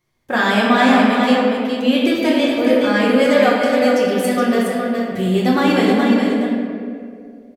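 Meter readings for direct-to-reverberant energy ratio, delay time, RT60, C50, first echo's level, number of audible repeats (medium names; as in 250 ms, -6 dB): -7.0 dB, 418 ms, 2.2 s, -2.0 dB, -5.5 dB, 1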